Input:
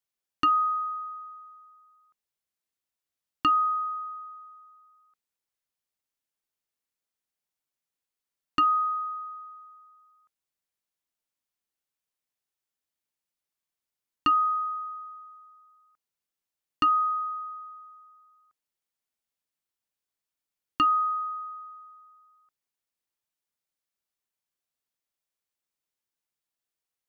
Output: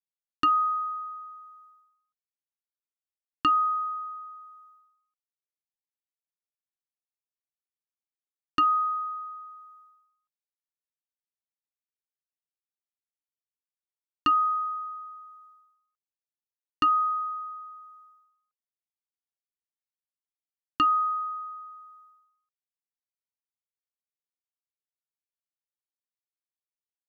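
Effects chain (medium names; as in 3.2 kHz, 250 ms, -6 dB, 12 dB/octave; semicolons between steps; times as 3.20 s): expander -53 dBFS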